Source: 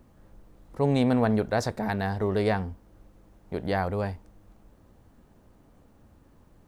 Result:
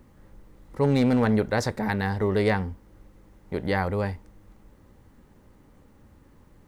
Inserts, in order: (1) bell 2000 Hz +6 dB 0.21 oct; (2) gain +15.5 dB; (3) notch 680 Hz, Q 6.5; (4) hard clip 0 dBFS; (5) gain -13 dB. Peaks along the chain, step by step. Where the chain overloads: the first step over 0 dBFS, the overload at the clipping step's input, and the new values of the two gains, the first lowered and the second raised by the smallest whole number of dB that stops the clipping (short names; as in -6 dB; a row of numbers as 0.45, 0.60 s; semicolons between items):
-10.0, +5.5, +5.0, 0.0, -13.0 dBFS; step 2, 5.0 dB; step 2 +10.5 dB, step 5 -8 dB